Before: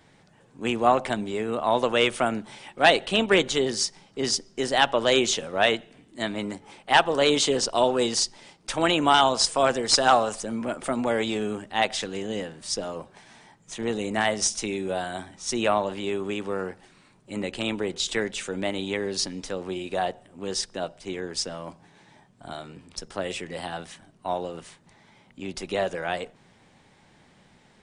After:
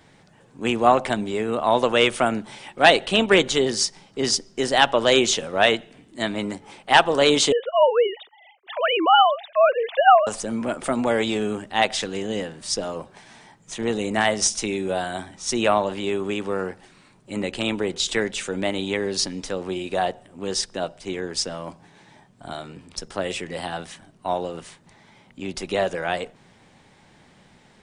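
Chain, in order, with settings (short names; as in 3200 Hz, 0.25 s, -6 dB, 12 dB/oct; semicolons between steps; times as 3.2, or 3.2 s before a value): 7.52–10.27 sine-wave speech; gain +3.5 dB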